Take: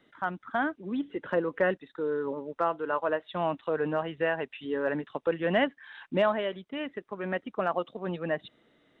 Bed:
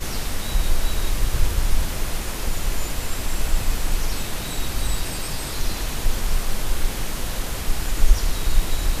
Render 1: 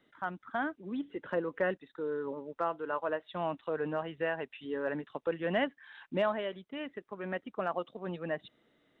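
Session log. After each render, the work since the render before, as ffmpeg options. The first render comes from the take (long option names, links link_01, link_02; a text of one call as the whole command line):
ffmpeg -i in.wav -af "volume=-5dB" out.wav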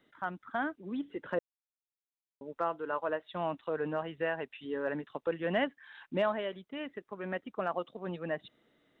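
ffmpeg -i in.wav -filter_complex "[0:a]asplit=3[link_01][link_02][link_03];[link_01]atrim=end=1.39,asetpts=PTS-STARTPTS,afade=type=out:start_time=1.386:duration=0.004:curve=hsin[link_04];[link_02]atrim=start=1.39:end=2.41,asetpts=PTS-STARTPTS,volume=0[link_05];[link_03]atrim=start=2.41,asetpts=PTS-STARTPTS,afade=type=in:duration=0.004:curve=hsin[link_06];[link_04][link_05][link_06]concat=n=3:v=0:a=1" out.wav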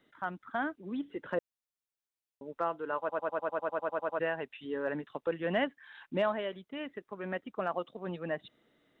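ffmpeg -i in.wav -filter_complex "[0:a]asplit=13[link_01][link_02][link_03][link_04][link_05][link_06][link_07][link_08][link_09][link_10][link_11][link_12][link_13];[link_01]atrim=end=3.092[link_14];[link_02]atrim=start=2.988:end=3.092[link_15];[link_03]atrim=start=2.988:end=3.092[link_16];[link_04]atrim=start=2.988:end=3.092[link_17];[link_05]atrim=start=2.988:end=3.092[link_18];[link_06]atrim=start=2.988:end=3.092[link_19];[link_07]atrim=start=2.988:end=3.092[link_20];[link_08]atrim=start=2.988:end=3.092[link_21];[link_09]atrim=start=2.988:end=3.092[link_22];[link_10]atrim=start=2.988:end=3.092[link_23];[link_11]atrim=start=2.988:end=3.092[link_24];[link_12]atrim=start=2.988:end=3.092[link_25];[link_13]atrim=start=4.188[link_26];[link_14][link_15]acrossfade=duration=0.004:curve1=hsin:curve2=hsin[link_27];[link_27][link_16]acrossfade=duration=0.004:curve1=hsin:curve2=hsin[link_28];[link_28][link_17]acrossfade=duration=0.004:curve1=hsin:curve2=hsin[link_29];[link_29][link_18]acrossfade=duration=0.004:curve1=hsin:curve2=hsin[link_30];[link_30][link_19]acrossfade=duration=0.004:curve1=hsin:curve2=hsin[link_31];[link_31][link_20]acrossfade=duration=0.004:curve1=hsin:curve2=hsin[link_32];[link_32][link_21]acrossfade=duration=0.004:curve1=hsin:curve2=hsin[link_33];[link_33][link_22]acrossfade=duration=0.004:curve1=hsin:curve2=hsin[link_34];[link_34][link_23]acrossfade=duration=0.004:curve1=hsin:curve2=hsin[link_35];[link_35][link_24]acrossfade=duration=0.004:curve1=hsin:curve2=hsin[link_36];[link_36][link_25]acrossfade=duration=0.004:curve1=hsin:curve2=hsin[link_37];[link_37][link_26]acrossfade=duration=0.004:curve1=hsin:curve2=hsin" out.wav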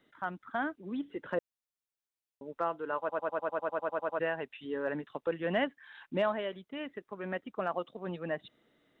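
ffmpeg -i in.wav -af anull out.wav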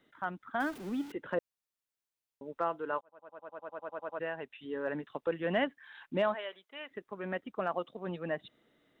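ffmpeg -i in.wav -filter_complex "[0:a]asettb=1/sr,asplit=3[link_01][link_02][link_03];[link_01]atrim=end=0.604[link_04];[link_02]atrim=start=0.6:end=1.12,asetpts=PTS-STARTPTS,afade=type=in:duration=0.004:curve=qsin,afade=type=out:start_time=0.516:duration=0.004:curve=qsin,aeval=exprs='val(0)+0.5*0.0075*sgn(val(0))':channel_layout=same[link_05];[link_03]atrim=start=1.116[link_06];[link_04][link_05]acrossfade=duration=0.004:curve1=hsin:curve2=qsin[link_07];[link_07][link_06]acrossfade=duration=0.004:curve1=qsin:curve2=hsin,asplit=3[link_08][link_09][link_10];[link_08]afade=type=out:start_time=6.33:duration=0.02[link_11];[link_09]highpass=710,afade=type=in:start_time=6.33:duration=0.02,afade=type=out:start_time=6.9:duration=0.02[link_12];[link_10]afade=type=in:start_time=6.9:duration=0.02[link_13];[link_11][link_12][link_13]amix=inputs=3:normalize=0,asplit=2[link_14][link_15];[link_14]atrim=end=3.01,asetpts=PTS-STARTPTS,afade=type=out:start_time=3.006:duration=0.004:curve=hsin[link_16];[link_15]atrim=start=3.01,asetpts=PTS-STARTPTS,afade=type=in:duration=2.15[link_17];[link_16][link_17]concat=n=2:v=0:a=1" out.wav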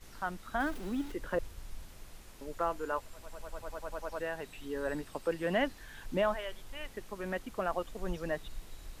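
ffmpeg -i in.wav -i bed.wav -filter_complex "[1:a]volume=-25.5dB[link_01];[0:a][link_01]amix=inputs=2:normalize=0" out.wav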